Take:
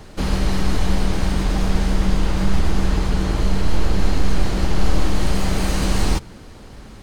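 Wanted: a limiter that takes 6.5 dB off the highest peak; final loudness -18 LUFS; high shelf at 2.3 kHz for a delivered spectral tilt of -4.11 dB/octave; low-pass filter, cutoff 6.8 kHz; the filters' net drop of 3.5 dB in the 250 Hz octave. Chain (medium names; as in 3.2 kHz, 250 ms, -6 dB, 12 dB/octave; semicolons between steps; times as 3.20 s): low-pass 6.8 kHz; peaking EQ 250 Hz -5.5 dB; treble shelf 2.3 kHz +8.5 dB; trim +5.5 dB; peak limiter -4 dBFS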